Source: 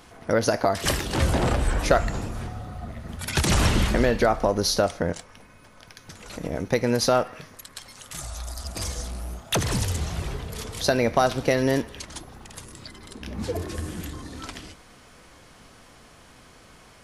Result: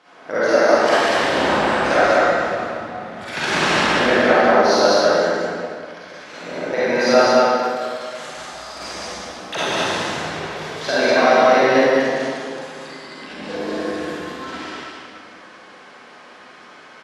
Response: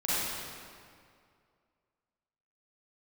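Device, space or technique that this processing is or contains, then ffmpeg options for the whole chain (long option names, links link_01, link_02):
station announcement: -filter_complex "[0:a]highpass=330,lowpass=4400,equalizer=frequency=1600:width_type=o:width=0.34:gain=4.5,aecho=1:1:113.7|195.3:0.355|0.794[link_01];[1:a]atrim=start_sample=2205[link_02];[link_01][link_02]afir=irnorm=-1:irlink=0,volume=-3dB"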